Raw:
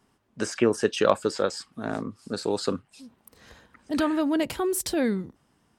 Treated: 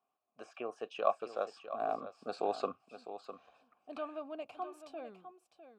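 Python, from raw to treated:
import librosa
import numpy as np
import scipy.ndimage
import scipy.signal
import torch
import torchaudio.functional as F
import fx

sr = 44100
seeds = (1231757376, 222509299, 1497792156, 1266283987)

y = fx.doppler_pass(x, sr, speed_mps=8, closest_m=4.3, pass_at_s=2.36)
y = fx.vowel_filter(y, sr, vowel='a')
y = y + 10.0 ** (-11.5 / 20.0) * np.pad(y, (int(654 * sr / 1000.0), 0))[:len(y)]
y = y * librosa.db_to_amplitude(7.5)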